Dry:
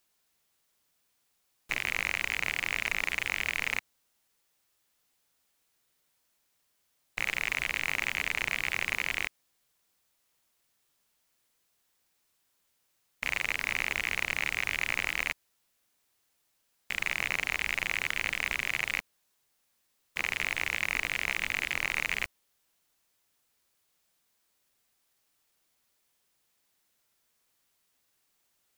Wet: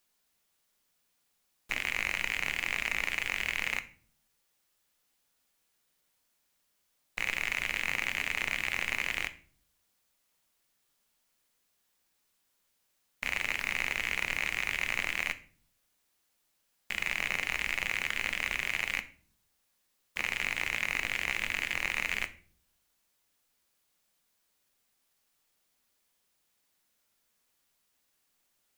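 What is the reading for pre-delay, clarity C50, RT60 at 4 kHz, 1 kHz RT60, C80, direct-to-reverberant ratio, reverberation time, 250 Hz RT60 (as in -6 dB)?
3 ms, 17.0 dB, 0.35 s, 0.40 s, 21.0 dB, 10.0 dB, 0.45 s, 0.80 s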